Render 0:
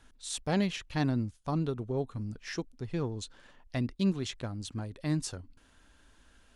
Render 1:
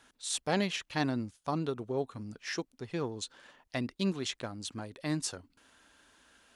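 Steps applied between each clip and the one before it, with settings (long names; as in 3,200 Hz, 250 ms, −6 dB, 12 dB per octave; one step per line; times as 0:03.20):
high-pass filter 380 Hz 6 dB per octave
level +3 dB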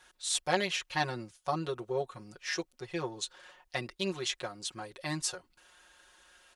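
parametric band 210 Hz −14 dB 0.97 octaves
comb filter 5.5 ms, depth 99%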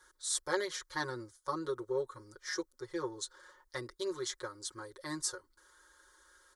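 phaser with its sweep stopped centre 710 Hz, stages 6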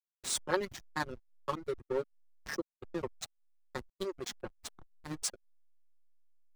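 slack as between gear wheels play −30.5 dBFS
reverb reduction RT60 0.71 s
level +3.5 dB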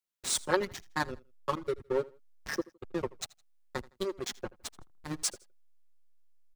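repeating echo 81 ms, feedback 30%, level −22 dB
level +3.5 dB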